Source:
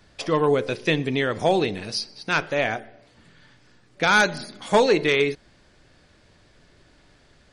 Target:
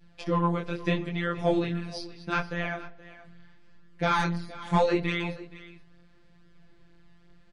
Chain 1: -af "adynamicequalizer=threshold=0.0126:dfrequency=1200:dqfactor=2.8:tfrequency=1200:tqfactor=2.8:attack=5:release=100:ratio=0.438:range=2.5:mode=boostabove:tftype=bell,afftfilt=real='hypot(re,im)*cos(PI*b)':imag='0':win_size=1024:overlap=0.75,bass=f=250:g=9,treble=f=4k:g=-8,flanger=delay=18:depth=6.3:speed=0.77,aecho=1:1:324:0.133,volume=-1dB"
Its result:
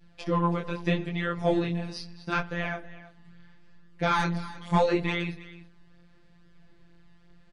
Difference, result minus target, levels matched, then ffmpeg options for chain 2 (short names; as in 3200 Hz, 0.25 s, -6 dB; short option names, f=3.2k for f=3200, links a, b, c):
echo 0.149 s early
-af "adynamicequalizer=threshold=0.0126:dfrequency=1200:dqfactor=2.8:tfrequency=1200:tqfactor=2.8:attack=5:release=100:ratio=0.438:range=2.5:mode=boostabove:tftype=bell,afftfilt=real='hypot(re,im)*cos(PI*b)':imag='0':win_size=1024:overlap=0.75,bass=f=250:g=9,treble=f=4k:g=-8,flanger=delay=18:depth=6.3:speed=0.77,aecho=1:1:473:0.133,volume=-1dB"